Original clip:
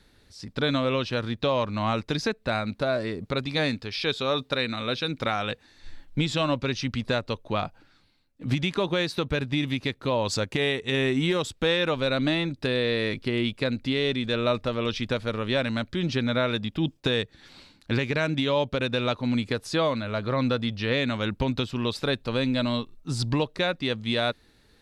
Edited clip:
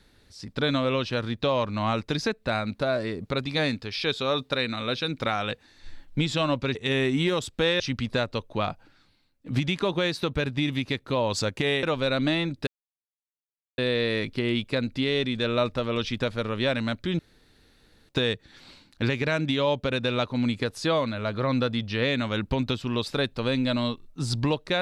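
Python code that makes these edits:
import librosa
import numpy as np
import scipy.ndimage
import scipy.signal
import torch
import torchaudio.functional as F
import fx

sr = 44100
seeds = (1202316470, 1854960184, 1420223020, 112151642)

y = fx.edit(x, sr, fx.move(start_s=10.78, length_s=1.05, to_s=6.75),
    fx.insert_silence(at_s=12.67, length_s=1.11),
    fx.room_tone_fill(start_s=16.08, length_s=0.9), tone=tone)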